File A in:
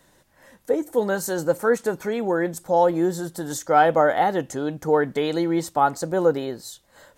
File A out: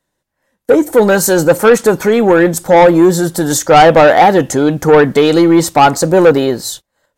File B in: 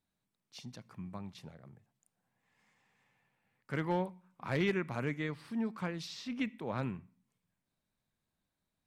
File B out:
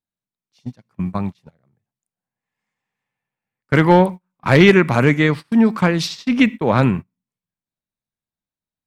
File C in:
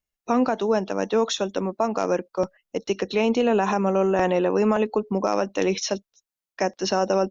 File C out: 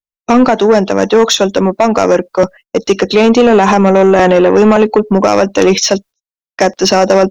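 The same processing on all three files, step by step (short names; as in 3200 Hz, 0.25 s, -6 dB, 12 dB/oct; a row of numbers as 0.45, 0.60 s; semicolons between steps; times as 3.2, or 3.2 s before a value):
gate -44 dBFS, range -30 dB; soft clip -18 dBFS; normalise peaks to -1.5 dBFS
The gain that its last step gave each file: +16.5, +21.5, +16.5 dB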